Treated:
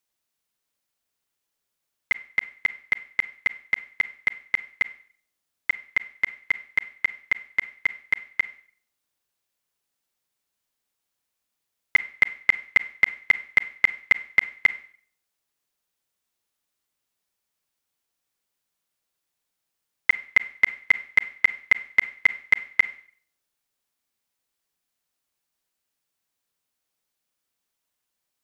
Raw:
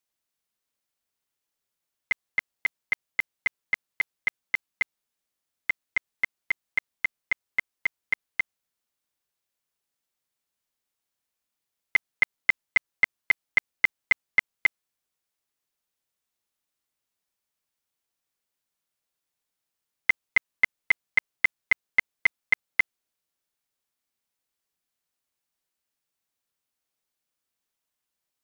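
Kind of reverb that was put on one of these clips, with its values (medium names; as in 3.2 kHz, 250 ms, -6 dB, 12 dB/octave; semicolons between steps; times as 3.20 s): Schroeder reverb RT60 0.5 s, combs from 32 ms, DRR 14 dB; trim +3 dB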